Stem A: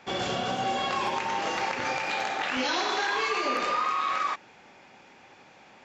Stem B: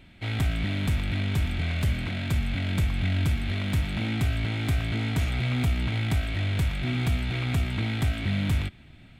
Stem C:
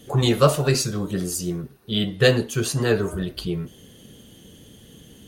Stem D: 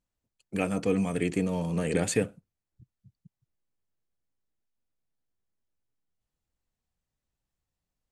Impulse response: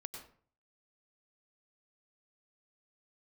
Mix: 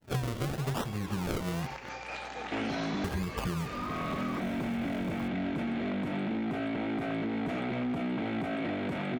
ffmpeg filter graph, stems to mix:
-filter_complex "[0:a]acompressor=threshold=-30dB:ratio=6,aeval=exprs='val(0)+0.00447*(sin(2*PI*60*n/s)+sin(2*PI*2*60*n/s)/2+sin(2*PI*3*60*n/s)/3+sin(2*PI*4*60*n/s)/4+sin(2*PI*5*60*n/s)/5)':channel_layout=same,adelay=50,volume=-4.5dB[link_01];[1:a]highpass=frequency=190:width=0.5412,highpass=frequency=190:width=1.3066,tiltshelf=frequency=970:gain=9,adelay=2300,volume=-0.5dB[link_02];[2:a]bass=frequency=250:gain=7,treble=frequency=4000:gain=11,acrossover=split=140|3000[link_03][link_04][link_05];[link_04]acompressor=threshold=-20dB:ratio=6[link_06];[link_03][link_06][link_05]amix=inputs=3:normalize=0,acrusher=samples=36:mix=1:aa=0.000001:lfo=1:lforange=36:lforate=0.84,volume=-1.5dB,asplit=3[link_07][link_08][link_09];[link_07]atrim=end=1.89,asetpts=PTS-STARTPTS,afade=type=out:start_time=1.886:duration=0.004:curve=hsin[link_10];[link_08]atrim=start=1.89:end=3.04,asetpts=PTS-STARTPTS,volume=0[link_11];[link_09]atrim=start=3.04,asetpts=PTS-STARTPTS,afade=type=in:duration=0.004:curve=hsin[link_12];[link_10][link_11][link_12]concat=n=3:v=0:a=1,asplit=2[link_13][link_14];[3:a]acompressor=threshold=-33dB:ratio=2,highpass=810,alimiter=level_in=7.5dB:limit=-24dB:level=0:latency=1:release=262,volume=-7.5dB,adelay=1500,volume=-5.5dB[link_15];[link_14]apad=whole_len=506777[link_16];[link_02][link_16]sidechaincompress=threshold=-38dB:ratio=8:attack=16:release=642[link_17];[link_17][link_15]amix=inputs=2:normalize=0,asplit=2[link_18][link_19];[link_19]highpass=frequency=720:poles=1,volume=19dB,asoftclip=type=tanh:threshold=-13dB[link_20];[link_18][link_20]amix=inputs=2:normalize=0,lowpass=frequency=1200:poles=1,volume=-6dB,alimiter=limit=-24dB:level=0:latency=1:release=17,volume=0dB[link_21];[link_01][link_13][link_21]amix=inputs=3:normalize=0,agate=range=-33dB:threshold=-33dB:ratio=3:detection=peak,acompressor=threshold=-29dB:ratio=16"

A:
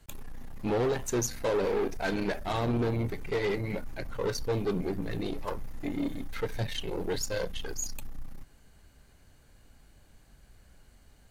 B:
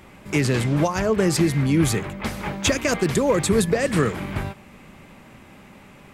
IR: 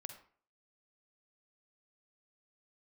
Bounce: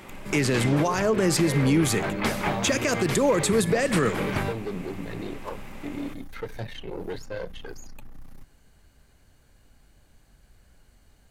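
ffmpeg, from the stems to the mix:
-filter_complex "[0:a]acrossover=split=120|2700[link_01][link_02][link_03];[link_01]acompressor=threshold=-38dB:ratio=4[link_04];[link_02]acompressor=threshold=-29dB:ratio=4[link_05];[link_03]acompressor=threshold=-53dB:ratio=4[link_06];[link_04][link_05][link_06]amix=inputs=3:normalize=0,volume=0dB[link_07];[1:a]highpass=frequency=170:poles=1,volume=1dB,asplit=2[link_08][link_09];[link_09]volume=-5.5dB[link_10];[2:a]atrim=start_sample=2205[link_11];[link_10][link_11]afir=irnorm=-1:irlink=0[link_12];[link_07][link_08][link_12]amix=inputs=3:normalize=0,alimiter=limit=-13dB:level=0:latency=1:release=107"

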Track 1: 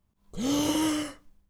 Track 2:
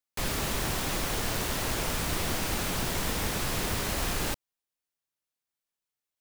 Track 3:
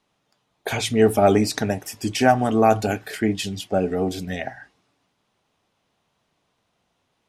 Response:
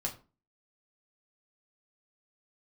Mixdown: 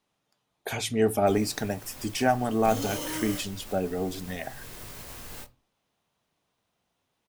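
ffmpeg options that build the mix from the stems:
-filter_complex "[0:a]acrusher=bits=5:mix=0:aa=0.000001,adelay=2300,volume=-2dB,asplit=2[link_01][link_02];[link_02]volume=-10.5dB[link_03];[1:a]alimiter=level_in=1dB:limit=-24dB:level=0:latency=1:release=477,volume=-1dB,adelay=1100,volume=-8dB,asplit=2[link_04][link_05];[link_05]volume=-9.5dB[link_06];[2:a]volume=-7dB,asplit=2[link_07][link_08];[link_08]apad=whole_len=322084[link_09];[link_04][link_09]sidechaincompress=threshold=-37dB:ratio=8:attack=8.3:release=390[link_10];[link_01][link_10]amix=inputs=2:normalize=0,flanger=delay=19:depth=2.9:speed=1.2,alimiter=level_in=7.5dB:limit=-24dB:level=0:latency=1,volume=-7.5dB,volume=0dB[link_11];[3:a]atrim=start_sample=2205[link_12];[link_03][link_06]amix=inputs=2:normalize=0[link_13];[link_13][link_12]afir=irnorm=-1:irlink=0[link_14];[link_07][link_11][link_14]amix=inputs=3:normalize=0,highshelf=frequency=10000:gain=8.5"

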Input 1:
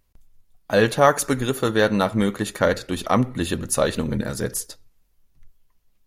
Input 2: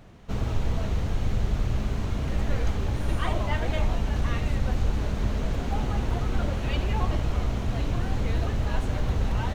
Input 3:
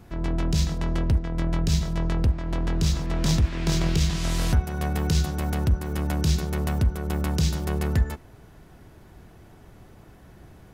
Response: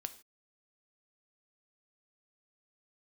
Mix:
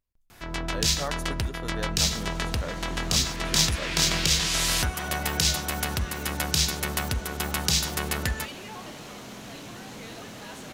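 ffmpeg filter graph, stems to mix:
-filter_complex "[0:a]volume=-18dB[link_01];[1:a]highpass=frequency=160:width=0.5412,highpass=frequency=160:width=1.3066,equalizer=frequency=8400:width=0.33:gain=12,asoftclip=type=tanh:threshold=-28dB,adelay=1750,volume=-6.5dB[link_02];[2:a]tiltshelf=frequency=810:gain=-9.5,adelay=300,volume=1dB[link_03];[link_01][link_02][link_03]amix=inputs=3:normalize=0"

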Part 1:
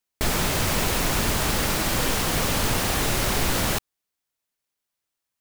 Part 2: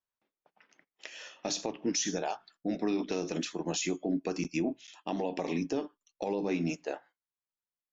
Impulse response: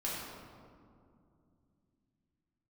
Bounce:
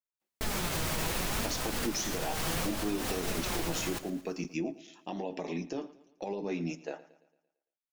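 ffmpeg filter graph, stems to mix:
-filter_complex "[0:a]alimiter=limit=-15dB:level=0:latency=1:release=60,flanger=delay=3.9:depth=2.5:regen=62:speed=0.7:shape=sinusoidal,adelay=200,volume=-3dB,asplit=2[link_01][link_02];[link_02]volume=-17.5dB[link_03];[1:a]agate=range=-7dB:threshold=-60dB:ratio=16:detection=peak,flanger=delay=4.6:depth=1.8:regen=-47:speed=0.93:shape=triangular,volume=0.5dB,asplit=3[link_04][link_05][link_06];[link_05]volume=-18.5dB[link_07];[link_06]apad=whole_len=247255[link_08];[link_01][link_08]sidechaincompress=threshold=-39dB:ratio=8:attack=46:release=151[link_09];[link_03][link_07]amix=inputs=2:normalize=0,aecho=0:1:113|226|339|452|565|678|791:1|0.48|0.23|0.111|0.0531|0.0255|0.0122[link_10];[link_09][link_04][link_10]amix=inputs=3:normalize=0"

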